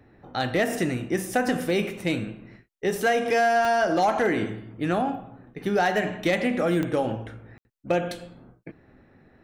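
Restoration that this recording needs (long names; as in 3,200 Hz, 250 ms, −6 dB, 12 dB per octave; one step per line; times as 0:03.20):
clipped peaks rebuilt −14.5 dBFS
click removal
ambience match 0:07.58–0:07.65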